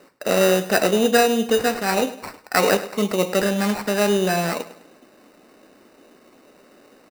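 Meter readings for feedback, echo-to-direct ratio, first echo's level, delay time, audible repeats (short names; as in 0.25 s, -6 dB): 40%, -14.5 dB, -15.5 dB, 0.103 s, 3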